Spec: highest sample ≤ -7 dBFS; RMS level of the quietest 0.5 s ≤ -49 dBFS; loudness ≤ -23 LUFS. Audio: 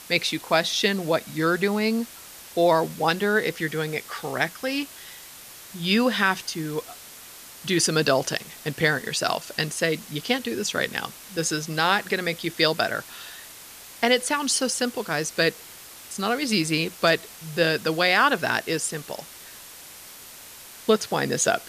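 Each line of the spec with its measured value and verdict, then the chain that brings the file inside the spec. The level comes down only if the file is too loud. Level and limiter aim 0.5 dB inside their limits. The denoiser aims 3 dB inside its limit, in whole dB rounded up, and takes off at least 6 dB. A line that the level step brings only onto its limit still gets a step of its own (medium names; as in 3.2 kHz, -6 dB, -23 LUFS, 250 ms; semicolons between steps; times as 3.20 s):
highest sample -6.0 dBFS: fail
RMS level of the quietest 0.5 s -44 dBFS: fail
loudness -24.0 LUFS: pass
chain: noise reduction 8 dB, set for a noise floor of -44 dBFS; peak limiter -7.5 dBFS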